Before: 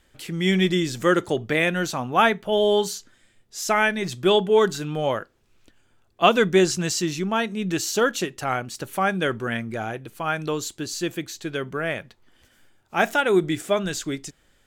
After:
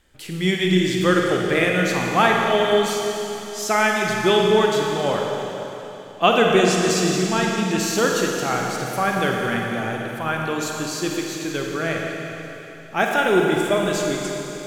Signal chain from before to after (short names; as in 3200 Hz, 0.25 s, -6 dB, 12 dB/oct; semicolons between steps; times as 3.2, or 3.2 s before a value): Schroeder reverb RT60 3.5 s, DRR -0.5 dB